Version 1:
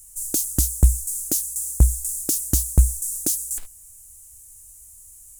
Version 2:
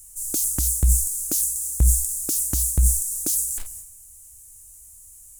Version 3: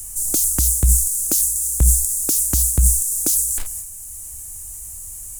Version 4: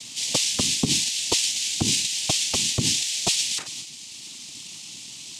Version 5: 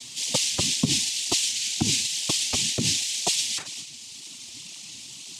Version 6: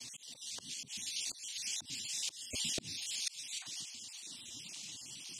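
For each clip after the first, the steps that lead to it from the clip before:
speech leveller 0.5 s; transient designer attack −3 dB, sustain +10 dB; level −1.5 dB
multiband upward and downward compressor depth 40%; level +5 dB
cochlear-implant simulation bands 4; level +1 dB
through-zero flanger with one copy inverted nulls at 2 Hz, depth 7 ms; level +1.5 dB
time-frequency cells dropped at random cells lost 30%; volume swells 521 ms; level −5.5 dB

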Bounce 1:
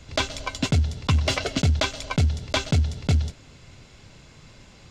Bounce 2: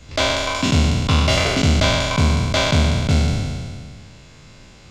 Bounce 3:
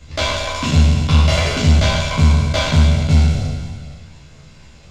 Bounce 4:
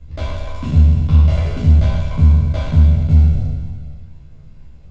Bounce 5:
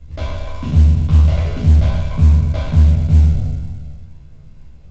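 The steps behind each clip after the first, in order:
peak hold with a decay on every bin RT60 2.00 s; level +1 dB
multi-voice chorus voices 6, 0.53 Hz, delay 13 ms, depth 1.1 ms; level +2 dB
spectral tilt −3.5 dB per octave; level −10.5 dB
phase distortion by the signal itself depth 0.32 ms; A-law companding 128 kbit/s 16,000 Hz

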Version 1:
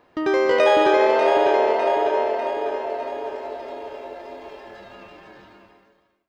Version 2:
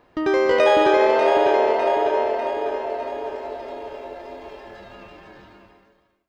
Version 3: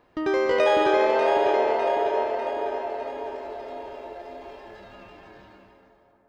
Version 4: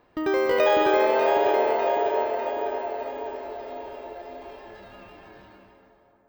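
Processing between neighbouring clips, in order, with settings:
low-shelf EQ 100 Hz +9.5 dB
convolution reverb RT60 5.8 s, pre-delay 118 ms, DRR 12.5 dB; level −4 dB
bad sample-rate conversion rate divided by 2×, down filtered, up hold

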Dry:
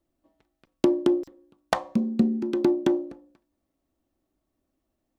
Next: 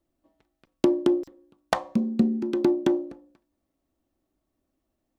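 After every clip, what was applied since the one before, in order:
no processing that can be heard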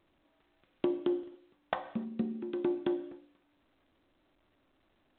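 low-shelf EQ 320 Hz −4.5 dB
reverb whose tail is shaped and stops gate 320 ms falling, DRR 10.5 dB
level −8.5 dB
A-law companding 64 kbit/s 8,000 Hz

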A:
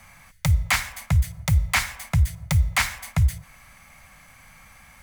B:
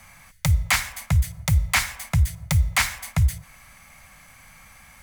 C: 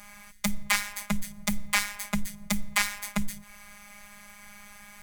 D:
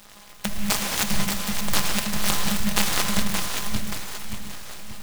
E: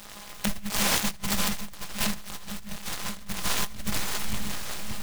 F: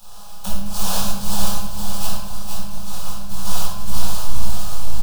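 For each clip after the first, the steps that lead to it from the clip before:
parametric band 11,000 Hz +3 dB 2.4 octaves
in parallel at +2.5 dB: downward compressor, threshold −30 dBFS, peak gain reduction 14.5 dB; on the sum: phases set to zero 205 Hz; level −4.5 dB
feedback delay that plays each chunk backwards 289 ms, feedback 68%, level −0.5 dB; reverb whose tail is shaped and stops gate 250 ms flat, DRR 2.5 dB; short delay modulated by noise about 2,200 Hz, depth 0.16 ms
compressor whose output falls as the input rises −26 dBFS, ratio −0.5; level −1 dB
phaser with its sweep stopped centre 830 Hz, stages 4; repeating echo 468 ms, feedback 31%, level −5.5 dB; rectangular room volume 440 cubic metres, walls mixed, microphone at 4.1 metres; level −6 dB

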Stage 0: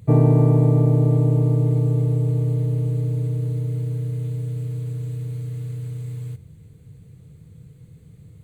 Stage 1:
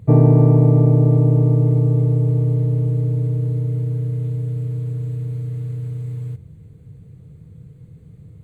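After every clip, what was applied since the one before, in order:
high-shelf EQ 2,100 Hz −10.5 dB
level +3.5 dB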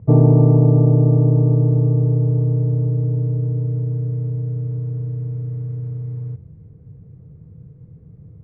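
low-pass filter 1,100 Hz 12 dB per octave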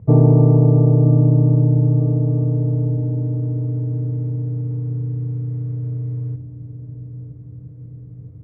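feedback echo with a low-pass in the loop 959 ms, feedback 60%, low-pass 890 Hz, level −11.5 dB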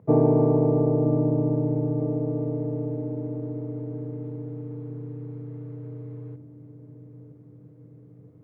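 high-pass filter 280 Hz 12 dB per octave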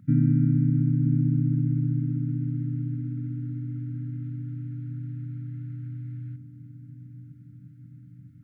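linear-phase brick-wall band-stop 290–1,300 Hz
level +3 dB

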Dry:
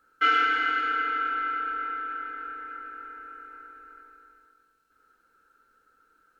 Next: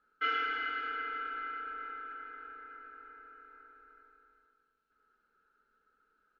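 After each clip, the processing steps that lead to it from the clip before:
low-pass filter 3,900 Hz 12 dB per octave
comb filter 4.8 ms, depth 44%
level −8.5 dB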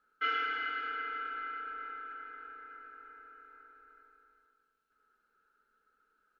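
low-shelf EQ 390 Hz −3.5 dB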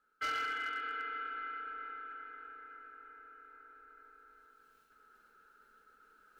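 hard clipping −29.5 dBFS, distortion −16 dB
reversed playback
upward compression, threshold −50 dBFS
reversed playback
level −2 dB

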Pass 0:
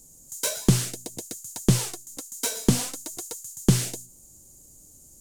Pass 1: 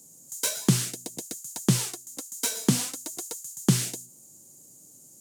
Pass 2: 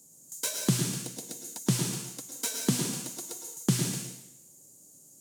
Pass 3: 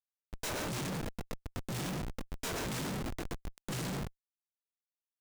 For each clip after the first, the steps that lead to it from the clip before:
dynamic equaliser 570 Hz, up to −6 dB, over −40 dBFS, Q 0.91; high-pass filter 130 Hz 24 dB per octave
dense smooth reverb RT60 0.81 s, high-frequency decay 1×, pre-delay 95 ms, DRR 3.5 dB; level −4.5 dB
chorus effect 2.9 Hz, delay 18 ms, depth 3.4 ms; comparator with hysteresis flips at −34.5 dBFS

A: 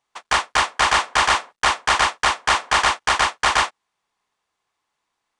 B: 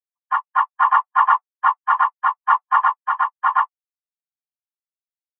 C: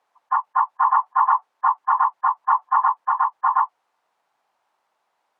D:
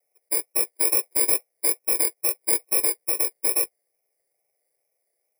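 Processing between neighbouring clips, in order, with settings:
every bin expanded away from the loudest bin 4 to 1; level +2.5 dB
resonant band-pass 870 Hz, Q 2.6; envelope flattener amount 50%
samples in bit-reversed order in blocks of 32 samples; phaser with its sweep stopped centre 920 Hz, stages 6; pitch vibrato 2.3 Hz 74 cents; level −1.5 dB

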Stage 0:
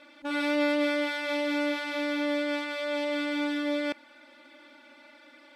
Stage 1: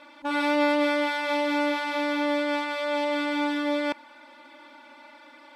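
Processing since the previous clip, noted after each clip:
parametric band 970 Hz +12.5 dB 0.41 octaves
level +2 dB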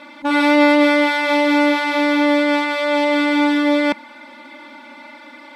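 hollow resonant body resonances 210/2,100/3,900 Hz, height 11 dB, ringing for 50 ms
level +8.5 dB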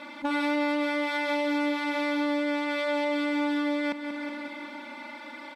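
on a send: repeating echo 185 ms, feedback 59%, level −14 dB
on the sum: downward compressor 3 to 1, threshold −26 dBFS, peak gain reduction 12.5 dB
level −2.5 dB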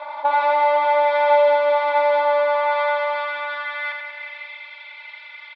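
high-pass filter sweep 740 Hz → 2,500 Hz, 0:02.21–0:04.52
loudspeaker in its box 450–3,800 Hz, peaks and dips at 620 Hz +9 dB, 980 Hz +8 dB, 1,700 Hz −3 dB, 2,800 Hz −6 dB
repeating echo 84 ms, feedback 53%, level −5 dB
level +3 dB

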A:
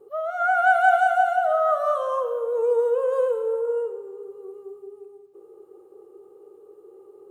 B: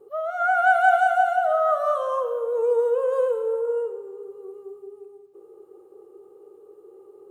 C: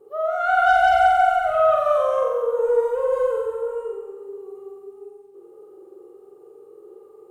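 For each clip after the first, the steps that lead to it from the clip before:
no processing that can be heard
harmonic generator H 4 −28 dB, 5 −21 dB, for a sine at −6.5 dBFS; flutter between parallel walls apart 7.8 metres, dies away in 1 s; level −3.5 dB

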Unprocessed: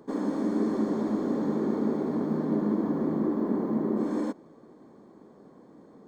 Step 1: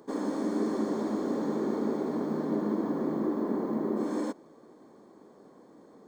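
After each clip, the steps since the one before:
bass and treble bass −7 dB, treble +5 dB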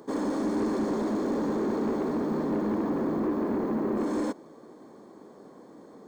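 soft clipping −27.5 dBFS, distortion −14 dB
level +5 dB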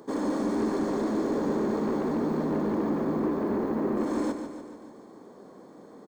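repeating echo 145 ms, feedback 58%, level −8.5 dB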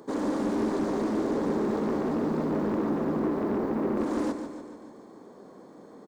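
highs frequency-modulated by the lows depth 0.29 ms

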